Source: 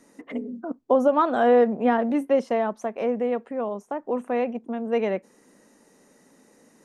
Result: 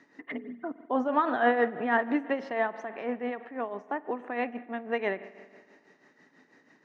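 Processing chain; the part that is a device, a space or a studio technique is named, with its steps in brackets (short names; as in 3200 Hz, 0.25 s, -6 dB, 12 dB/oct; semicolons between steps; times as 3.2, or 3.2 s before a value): combo amplifier with spring reverb and tremolo (spring tank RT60 1.8 s, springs 46 ms, chirp 45 ms, DRR 13.5 dB; tremolo 6.1 Hz, depth 62%; speaker cabinet 110–4600 Hz, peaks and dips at 210 Hz -9 dB, 520 Hz -9 dB, 1800 Hz +10 dB)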